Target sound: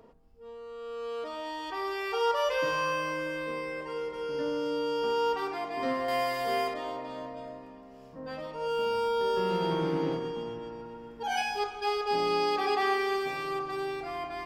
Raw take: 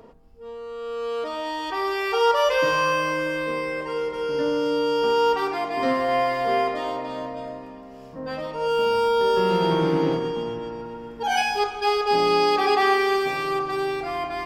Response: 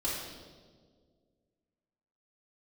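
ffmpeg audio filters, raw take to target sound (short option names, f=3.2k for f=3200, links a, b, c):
-filter_complex "[0:a]asettb=1/sr,asplit=3[a][b][c];[a]atrim=end=6.084[d];[b]atrim=start=6.08:end=6.74,asetpts=PTS-STARTPTS,afade=t=in:d=0.004:c=qsin,afade=t=out:st=0.656:d=0.004:c=qsin,aemphasis=mode=production:type=75kf[e];[c]atrim=start=6.736[f];[d][e]acrossfade=d=0.004:c1=hsin:c2=qsin[g];[g][f]acrossfade=d=0.004:c1=qsin:c2=hsin,volume=-8dB"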